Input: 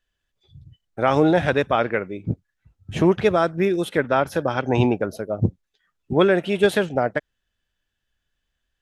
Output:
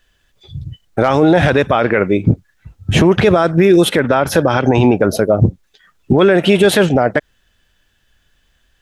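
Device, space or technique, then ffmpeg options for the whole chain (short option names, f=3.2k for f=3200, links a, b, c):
loud club master: -af "acompressor=threshold=-23dB:ratio=1.5,asoftclip=type=hard:threshold=-9.5dB,alimiter=level_in=19dB:limit=-1dB:release=50:level=0:latency=1,volume=-1dB"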